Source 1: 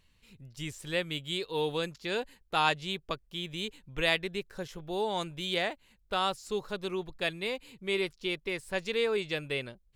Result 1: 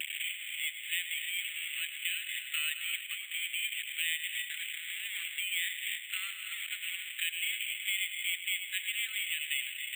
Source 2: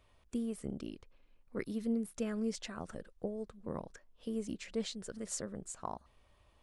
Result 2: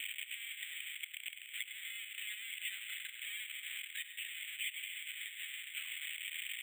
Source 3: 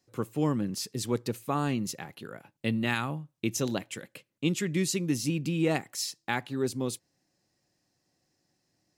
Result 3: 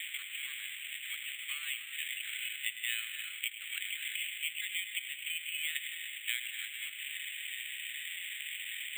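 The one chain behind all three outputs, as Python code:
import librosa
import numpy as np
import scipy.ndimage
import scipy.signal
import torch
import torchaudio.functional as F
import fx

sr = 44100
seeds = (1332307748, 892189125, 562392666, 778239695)

p1 = x + 0.5 * 10.0 ** (-19.5 / 20.0) * np.diff(np.sign(x), prepend=np.sign(x[:1]))
p2 = scipy.signal.sosfilt(scipy.signal.ellip(4, 1.0, 60, 2100.0, 'highpass', fs=sr, output='sos'), p1)
p3 = fx.high_shelf(p2, sr, hz=6200.0, db=-3.0)
p4 = fx.over_compress(p3, sr, threshold_db=-32.0, ratio=-0.5)
p5 = p3 + (p4 * librosa.db_to_amplitude(-1.0))
p6 = fx.vibrato(p5, sr, rate_hz=2.6, depth_cents=31.0)
p7 = p6 + 10.0 ** (-13.0 / 20.0) * np.pad(p6, (int(103 * sr / 1000.0), 0))[:len(p6)]
p8 = fx.rev_gated(p7, sr, seeds[0], gate_ms=320, shape='rising', drr_db=8.5)
p9 = np.repeat(scipy.signal.resample_poly(p8, 1, 8), 8)[:len(p8)]
y = fx.band_squash(p9, sr, depth_pct=70)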